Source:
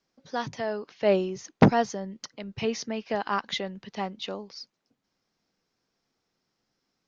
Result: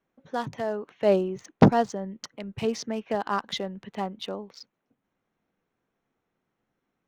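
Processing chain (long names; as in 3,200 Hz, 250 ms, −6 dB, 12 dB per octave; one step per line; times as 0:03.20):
adaptive Wiener filter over 9 samples
dynamic equaliser 2,200 Hz, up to −6 dB, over −45 dBFS, Q 1.5
level +1.5 dB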